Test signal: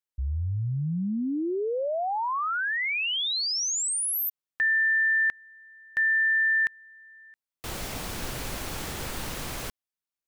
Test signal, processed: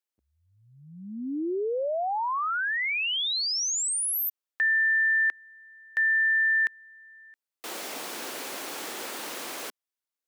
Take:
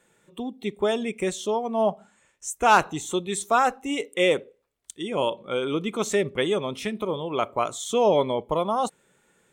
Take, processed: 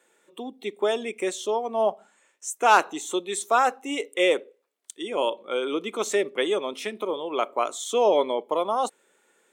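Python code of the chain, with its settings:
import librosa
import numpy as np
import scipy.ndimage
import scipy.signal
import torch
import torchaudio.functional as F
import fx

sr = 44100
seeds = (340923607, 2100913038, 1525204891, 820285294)

y = scipy.signal.sosfilt(scipy.signal.butter(4, 280.0, 'highpass', fs=sr, output='sos'), x)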